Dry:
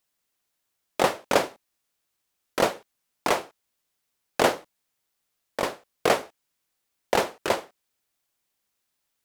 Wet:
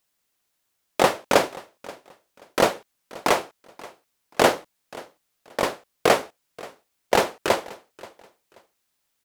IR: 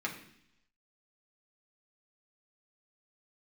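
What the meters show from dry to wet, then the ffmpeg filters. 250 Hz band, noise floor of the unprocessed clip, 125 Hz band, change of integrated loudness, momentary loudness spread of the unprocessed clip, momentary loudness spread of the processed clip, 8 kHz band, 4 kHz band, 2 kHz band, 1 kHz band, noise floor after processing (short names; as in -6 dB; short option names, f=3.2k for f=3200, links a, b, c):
+3.5 dB, -79 dBFS, +3.5 dB, +3.0 dB, 12 LU, 22 LU, +3.5 dB, +3.5 dB, +3.5 dB, +3.5 dB, -75 dBFS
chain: -af "aecho=1:1:531|1062:0.0891|0.0223,volume=3.5dB"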